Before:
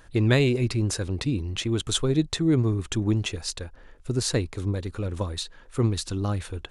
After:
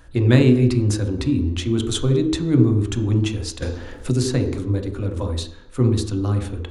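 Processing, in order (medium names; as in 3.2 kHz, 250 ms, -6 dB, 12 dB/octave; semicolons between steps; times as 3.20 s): on a send at -4 dB: reverberation RT60 0.70 s, pre-delay 3 ms; 3.62–4.59 s: on the sum: three bands compressed up and down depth 70%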